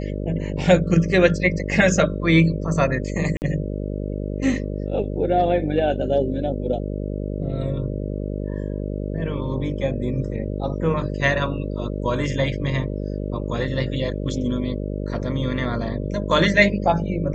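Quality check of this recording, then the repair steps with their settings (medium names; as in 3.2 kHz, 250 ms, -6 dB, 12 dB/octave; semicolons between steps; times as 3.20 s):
buzz 50 Hz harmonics 12 -27 dBFS
3.37–3.42 s: dropout 49 ms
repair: de-hum 50 Hz, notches 12; interpolate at 3.37 s, 49 ms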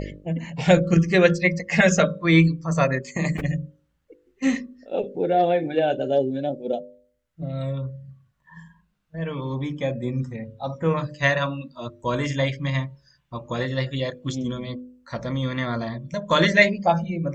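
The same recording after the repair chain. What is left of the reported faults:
nothing left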